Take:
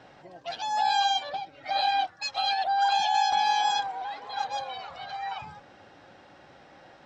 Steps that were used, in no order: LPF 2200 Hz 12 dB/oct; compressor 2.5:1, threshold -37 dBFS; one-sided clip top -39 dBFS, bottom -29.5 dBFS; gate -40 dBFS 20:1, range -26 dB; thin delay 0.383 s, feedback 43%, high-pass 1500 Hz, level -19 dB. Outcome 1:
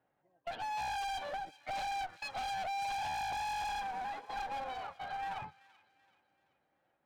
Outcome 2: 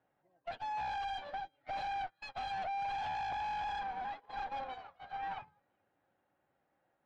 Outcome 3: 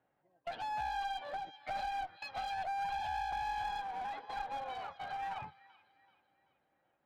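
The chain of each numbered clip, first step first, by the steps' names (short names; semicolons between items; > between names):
gate > LPF > one-sided clip > thin delay > compressor; thin delay > one-sided clip > compressor > gate > LPF; gate > thin delay > compressor > LPF > one-sided clip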